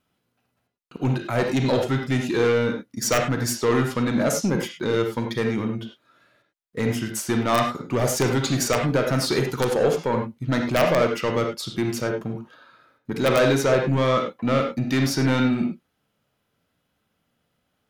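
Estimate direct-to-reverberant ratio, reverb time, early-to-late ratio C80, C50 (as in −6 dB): 3.0 dB, non-exponential decay, 9.0 dB, 5.0 dB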